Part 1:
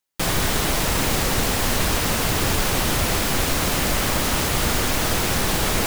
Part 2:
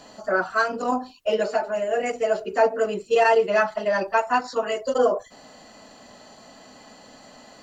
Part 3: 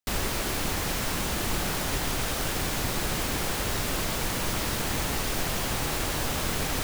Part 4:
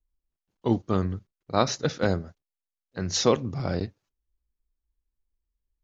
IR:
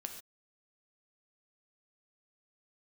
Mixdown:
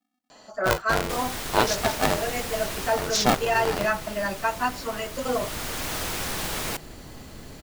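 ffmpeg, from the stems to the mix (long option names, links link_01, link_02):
-filter_complex "[0:a]adelay=900,afade=type=out:start_time=2.83:duration=0.3:silence=0.446684,afade=type=in:start_time=5.14:duration=0.79:silence=0.316228[link_01];[1:a]asubboost=boost=9:cutoff=150,adelay=300,volume=-2dB[link_02];[2:a]acrossover=split=450[link_03][link_04];[link_04]acompressor=threshold=-49dB:ratio=2.5[link_05];[link_03][link_05]amix=inputs=2:normalize=0,adelay=900,volume=-6.5dB[link_06];[3:a]bass=frequency=250:gain=-4,treble=frequency=4000:gain=-1,aeval=exprs='val(0)*sgn(sin(2*PI*250*n/s))':channel_layout=same,volume=3dB[link_07];[link_01][link_02][link_06][link_07]amix=inputs=4:normalize=0,lowshelf=frequency=410:gain=-5.5"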